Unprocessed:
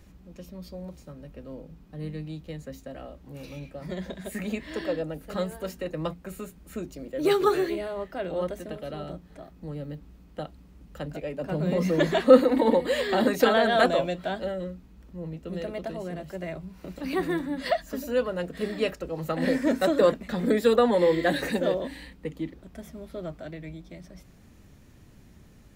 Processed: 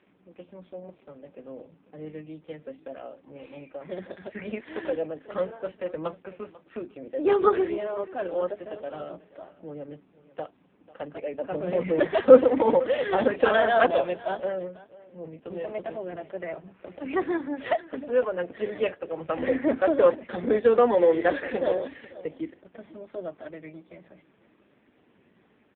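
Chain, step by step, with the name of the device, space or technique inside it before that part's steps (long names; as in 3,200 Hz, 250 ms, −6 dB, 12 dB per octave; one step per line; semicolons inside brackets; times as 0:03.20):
satellite phone (band-pass filter 330–3,300 Hz; single-tap delay 493 ms −19.5 dB; level +3.5 dB; AMR narrowband 5.15 kbit/s 8,000 Hz)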